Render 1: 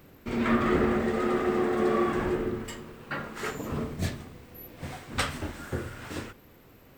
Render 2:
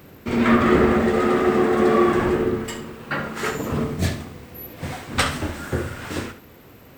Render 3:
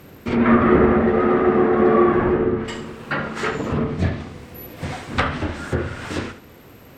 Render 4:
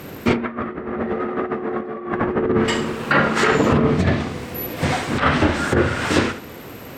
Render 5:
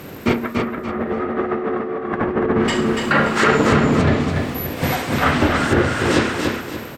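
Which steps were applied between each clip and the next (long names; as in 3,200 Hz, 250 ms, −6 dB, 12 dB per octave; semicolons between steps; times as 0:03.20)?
high-pass filter 47 Hz; on a send: flutter between parallel walls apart 11.6 metres, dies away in 0.35 s; on the sum: level +8 dB
treble cut that deepens with the level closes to 1,900 Hz, closed at −17.5 dBFS; level +2 dB
low-shelf EQ 87 Hz −9.5 dB; compressor whose output falls as the input rises −23 dBFS, ratio −0.5; level +5 dB
repeating echo 288 ms, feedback 33%, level −4 dB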